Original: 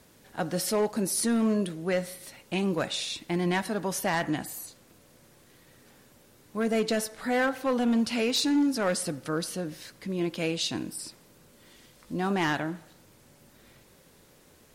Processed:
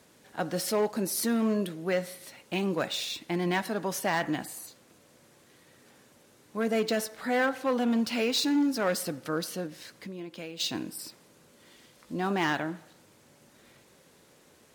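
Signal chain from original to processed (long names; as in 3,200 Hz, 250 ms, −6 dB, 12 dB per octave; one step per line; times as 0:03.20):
high-pass filter 170 Hz 6 dB per octave
0:09.66–0:10.60: downward compressor 5 to 1, threshold −38 dBFS, peak gain reduction 12 dB
linearly interpolated sample-rate reduction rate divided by 2×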